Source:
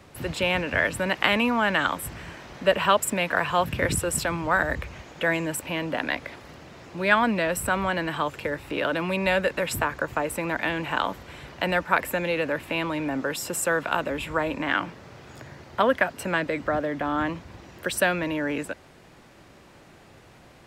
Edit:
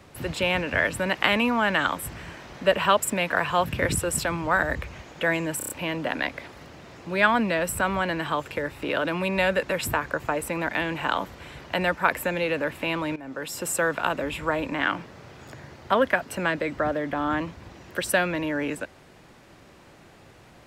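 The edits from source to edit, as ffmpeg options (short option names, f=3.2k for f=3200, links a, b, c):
-filter_complex "[0:a]asplit=6[a][b][c][d][e][f];[a]atrim=end=5.612[g];[b]atrim=start=5.578:end=5.612[h];[c]atrim=start=5.578:end=5.612[i];[d]atrim=start=5.578:end=5.612[j];[e]atrim=start=5.578:end=13.04,asetpts=PTS-STARTPTS,afade=t=out:st=7.458:d=0.004:c=hsin:silence=0.141254[k];[f]atrim=start=13.04,asetpts=PTS-STARTPTS,afade=t=in:d=0.51:silence=0.141254[l];[g][h]acrossfade=d=0.004:c1=hsin:c2=hsin[m];[m][i]acrossfade=d=0.004:c1=hsin:c2=hsin[n];[n][j]acrossfade=d=0.004:c1=hsin:c2=hsin[o];[k][l]concat=n=2:v=0:a=1[p];[o][p]acrossfade=d=0.004:c1=hsin:c2=hsin"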